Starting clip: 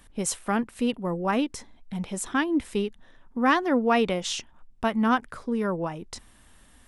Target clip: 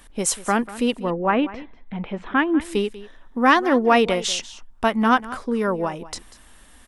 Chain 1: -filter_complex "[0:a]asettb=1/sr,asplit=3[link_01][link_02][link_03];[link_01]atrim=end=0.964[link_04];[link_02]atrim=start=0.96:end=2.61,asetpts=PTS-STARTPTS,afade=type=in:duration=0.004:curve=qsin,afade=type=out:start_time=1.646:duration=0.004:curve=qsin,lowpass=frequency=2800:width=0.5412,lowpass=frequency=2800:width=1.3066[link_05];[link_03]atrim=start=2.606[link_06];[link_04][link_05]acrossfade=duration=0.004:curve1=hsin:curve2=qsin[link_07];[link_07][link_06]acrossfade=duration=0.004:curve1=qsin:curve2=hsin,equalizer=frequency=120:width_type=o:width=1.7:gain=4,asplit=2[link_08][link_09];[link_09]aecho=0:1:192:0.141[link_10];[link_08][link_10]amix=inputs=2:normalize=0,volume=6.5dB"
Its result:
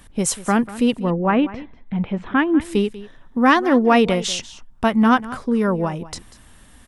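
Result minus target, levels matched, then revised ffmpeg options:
125 Hz band +5.5 dB
-filter_complex "[0:a]asettb=1/sr,asplit=3[link_01][link_02][link_03];[link_01]atrim=end=0.964[link_04];[link_02]atrim=start=0.96:end=2.61,asetpts=PTS-STARTPTS,afade=type=in:duration=0.004:curve=qsin,afade=type=out:start_time=1.646:duration=0.004:curve=qsin,lowpass=frequency=2800:width=0.5412,lowpass=frequency=2800:width=1.3066[link_05];[link_03]atrim=start=2.606[link_06];[link_04][link_05]acrossfade=duration=0.004:curve1=hsin:curve2=qsin[link_07];[link_07][link_06]acrossfade=duration=0.004:curve1=qsin:curve2=hsin,equalizer=frequency=120:width_type=o:width=1.7:gain=-7.5,asplit=2[link_08][link_09];[link_09]aecho=0:1:192:0.141[link_10];[link_08][link_10]amix=inputs=2:normalize=0,volume=6.5dB"

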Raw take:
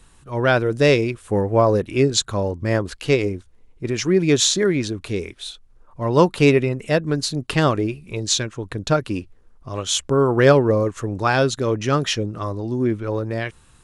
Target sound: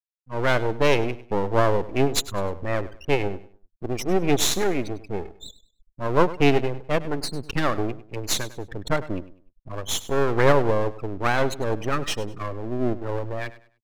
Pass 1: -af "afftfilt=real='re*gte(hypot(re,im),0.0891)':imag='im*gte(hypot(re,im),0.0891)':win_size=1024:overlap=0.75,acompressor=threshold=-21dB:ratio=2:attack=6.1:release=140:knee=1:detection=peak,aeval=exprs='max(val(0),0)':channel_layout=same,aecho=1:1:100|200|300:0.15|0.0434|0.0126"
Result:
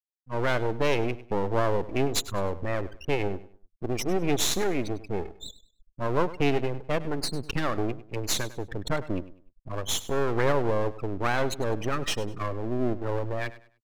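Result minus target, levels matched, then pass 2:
downward compressor: peak gain reduction +7.5 dB
-af "afftfilt=real='re*gte(hypot(re,im),0.0891)':imag='im*gte(hypot(re,im),0.0891)':win_size=1024:overlap=0.75,aeval=exprs='max(val(0),0)':channel_layout=same,aecho=1:1:100|200|300:0.15|0.0434|0.0126"

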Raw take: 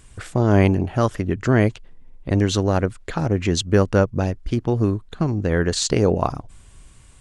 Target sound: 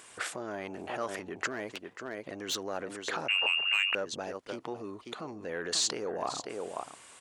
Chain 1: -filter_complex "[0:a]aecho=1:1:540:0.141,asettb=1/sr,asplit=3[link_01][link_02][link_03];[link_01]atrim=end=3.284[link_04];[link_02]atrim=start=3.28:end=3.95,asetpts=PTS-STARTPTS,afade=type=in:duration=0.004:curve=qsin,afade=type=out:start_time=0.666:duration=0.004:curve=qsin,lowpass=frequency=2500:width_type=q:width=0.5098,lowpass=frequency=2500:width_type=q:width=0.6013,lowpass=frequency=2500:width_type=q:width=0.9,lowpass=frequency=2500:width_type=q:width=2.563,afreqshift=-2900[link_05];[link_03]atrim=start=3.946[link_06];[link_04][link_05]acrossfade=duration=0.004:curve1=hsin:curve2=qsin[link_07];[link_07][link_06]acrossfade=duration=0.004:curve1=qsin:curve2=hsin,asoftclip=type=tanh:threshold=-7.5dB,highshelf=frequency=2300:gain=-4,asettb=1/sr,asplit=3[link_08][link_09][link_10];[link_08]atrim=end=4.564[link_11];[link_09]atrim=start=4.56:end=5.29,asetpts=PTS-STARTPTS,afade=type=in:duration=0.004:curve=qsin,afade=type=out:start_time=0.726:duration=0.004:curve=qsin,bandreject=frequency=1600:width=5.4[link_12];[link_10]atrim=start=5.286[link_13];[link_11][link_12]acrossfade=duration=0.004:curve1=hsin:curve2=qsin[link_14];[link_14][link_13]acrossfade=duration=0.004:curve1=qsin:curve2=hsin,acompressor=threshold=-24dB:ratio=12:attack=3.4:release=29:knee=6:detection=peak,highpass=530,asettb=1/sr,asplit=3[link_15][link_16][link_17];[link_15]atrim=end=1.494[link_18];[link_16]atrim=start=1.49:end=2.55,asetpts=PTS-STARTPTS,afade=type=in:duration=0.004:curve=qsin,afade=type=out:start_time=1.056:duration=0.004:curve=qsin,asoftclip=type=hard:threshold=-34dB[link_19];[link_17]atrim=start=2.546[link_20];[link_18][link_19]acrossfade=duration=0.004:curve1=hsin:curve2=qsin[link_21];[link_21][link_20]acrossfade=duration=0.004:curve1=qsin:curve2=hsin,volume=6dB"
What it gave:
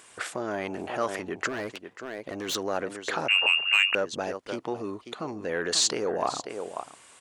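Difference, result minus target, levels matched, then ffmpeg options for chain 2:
downward compressor: peak gain reduction −7 dB
-filter_complex "[0:a]aecho=1:1:540:0.141,asettb=1/sr,asplit=3[link_01][link_02][link_03];[link_01]atrim=end=3.284[link_04];[link_02]atrim=start=3.28:end=3.95,asetpts=PTS-STARTPTS,afade=type=in:duration=0.004:curve=qsin,afade=type=out:start_time=0.666:duration=0.004:curve=qsin,lowpass=frequency=2500:width_type=q:width=0.5098,lowpass=frequency=2500:width_type=q:width=0.6013,lowpass=frequency=2500:width_type=q:width=0.9,lowpass=frequency=2500:width_type=q:width=2.563,afreqshift=-2900[link_05];[link_03]atrim=start=3.946[link_06];[link_04][link_05]acrossfade=duration=0.004:curve1=hsin:curve2=qsin[link_07];[link_07][link_06]acrossfade=duration=0.004:curve1=qsin:curve2=hsin,asoftclip=type=tanh:threshold=-7.5dB,highshelf=frequency=2300:gain=-4,asettb=1/sr,asplit=3[link_08][link_09][link_10];[link_08]atrim=end=4.564[link_11];[link_09]atrim=start=4.56:end=5.29,asetpts=PTS-STARTPTS,afade=type=in:duration=0.004:curve=qsin,afade=type=out:start_time=0.726:duration=0.004:curve=qsin,bandreject=frequency=1600:width=5.4[link_12];[link_10]atrim=start=5.286[link_13];[link_11][link_12]acrossfade=duration=0.004:curve1=hsin:curve2=qsin[link_14];[link_14][link_13]acrossfade=duration=0.004:curve1=qsin:curve2=hsin,acompressor=threshold=-31.5dB:ratio=12:attack=3.4:release=29:knee=6:detection=peak,highpass=530,asettb=1/sr,asplit=3[link_15][link_16][link_17];[link_15]atrim=end=1.494[link_18];[link_16]atrim=start=1.49:end=2.55,asetpts=PTS-STARTPTS,afade=type=in:duration=0.004:curve=qsin,afade=type=out:start_time=1.056:duration=0.004:curve=qsin,asoftclip=type=hard:threshold=-34dB[link_19];[link_17]atrim=start=2.546[link_20];[link_18][link_19]acrossfade=duration=0.004:curve1=hsin:curve2=qsin[link_21];[link_21][link_20]acrossfade=duration=0.004:curve1=qsin:curve2=hsin,volume=6dB"

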